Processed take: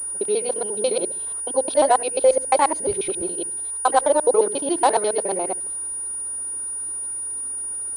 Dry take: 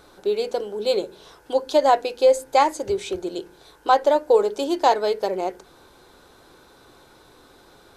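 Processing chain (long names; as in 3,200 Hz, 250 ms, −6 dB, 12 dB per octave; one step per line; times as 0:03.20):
reversed piece by piece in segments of 70 ms
low-pass that shuts in the quiet parts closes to 2,900 Hz, open at −16.5 dBFS
switching amplifier with a slow clock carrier 9,600 Hz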